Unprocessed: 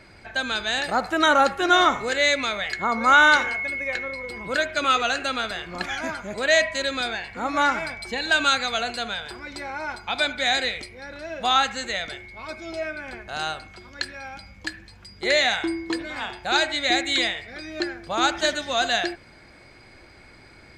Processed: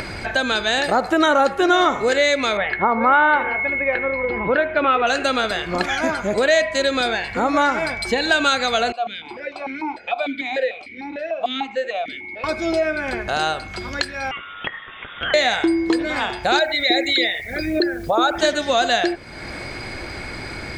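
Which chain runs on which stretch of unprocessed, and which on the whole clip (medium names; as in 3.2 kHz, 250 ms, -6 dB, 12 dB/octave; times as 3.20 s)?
2.57–5.07 s: low-pass 2.7 kHz 24 dB/octave + peaking EQ 880 Hz +6.5 dB 0.27 oct
8.92–12.44 s: hum notches 60/120/180/240/300/360/420/480 Hz + stepped vowel filter 6.7 Hz
14.31–15.34 s: high-pass 1.1 kHz 6 dB/octave + compression 3:1, threshold -31 dBFS + frequency inversion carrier 3.6 kHz
16.59–18.39 s: resonances exaggerated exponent 2 + word length cut 10-bit, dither triangular
whole clip: upward compressor, threshold -24 dBFS; dynamic bell 430 Hz, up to +7 dB, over -37 dBFS, Q 0.74; compression 2.5:1, threshold -21 dBFS; trim +5.5 dB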